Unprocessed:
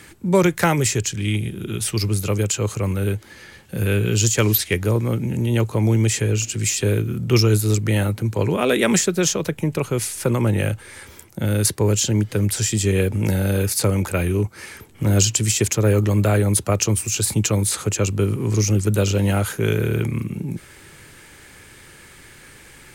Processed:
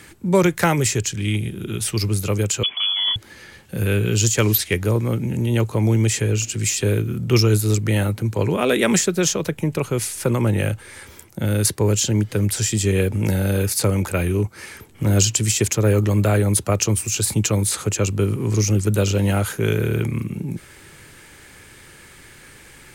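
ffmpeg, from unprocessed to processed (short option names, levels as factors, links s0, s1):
-filter_complex "[0:a]asettb=1/sr,asplit=3[s0][s1][s2];[s0]atrim=end=2.634[s3];[s1]atrim=start=2.63:end=3.16,asetpts=PTS-STARTPTS,afade=t=in:d=0.004:c=qsin,afade=t=out:st=0.526:d=0.004:c=qsin,lowpass=f=3000:t=q:w=0.5098,lowpass=f=3000:t=q:w=0.6013,lowpass=f=3000:t=q:w=0.9,lowpass=f=3000:t=q:w=2.563,afreqshift=-3500[s4];[s2]atrim=start=3.156[s5];[s3][s4]acrossfade=d=0.004:c1=hsin:c2=qsin[s6];[s6][s5]acrossfade=d=0.004:c1=qsin:c2=hsin"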